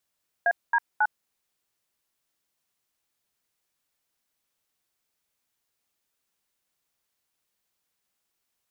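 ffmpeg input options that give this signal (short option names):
-f lavfi -i "aevalsrc='0.0891*clip(min(mod(t,0.272),0.052-mod(t,0.272))/0.002,0,1)*(eq(floor(t/0.272),0)*(sin(2*PI*697*mod(t,0.272))+sin(2*PI*1633*mod(t,0.272)))+eq(floor(t/0.272),1)*(sin(2*PI*941*mod(t,0.272))+sin(2*PI*1633*mod(t,0.272)))+eq(floor(t/0.272),2)*(sin(2*PI*852*mod(t,0.272))+sin(2*PI*1477*mod(t,0.272))))':d=0.816:s=44100"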